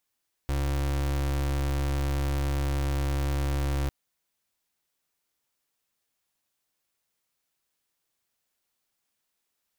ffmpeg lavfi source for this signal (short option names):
-f lavfi -i "aevalsrc='0.0447*(2*lt(mod(69.8*t,1),0.33)-1)':d=3.4:s=44100"